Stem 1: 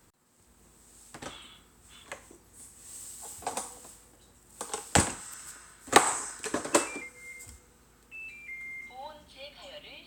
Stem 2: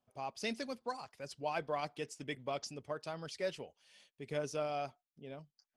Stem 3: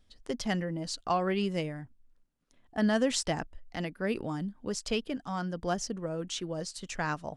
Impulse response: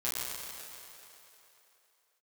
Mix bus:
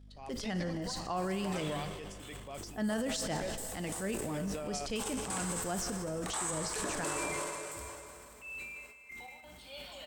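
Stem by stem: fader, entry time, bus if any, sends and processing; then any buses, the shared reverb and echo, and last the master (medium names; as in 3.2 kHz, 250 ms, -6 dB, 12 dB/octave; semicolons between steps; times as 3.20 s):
-2.5 dB, 0.30 s, send -10.5 dB, treble shelf 11 kHz +7 dB; trance gate "x..x.xxx" 87 bpm -24 dB
-5.5 dB, 0.00 s, no send, none
-4.5 dB, 0.00 s, send -14 dB, hum 50 Hz, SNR 17 dB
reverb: on, RT60 3.2 s, pre-delay 7 ms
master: transient shaper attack -5 dB, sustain +8 dB; peak limiter -26 dBFS, peak gain reduction 12.5 dB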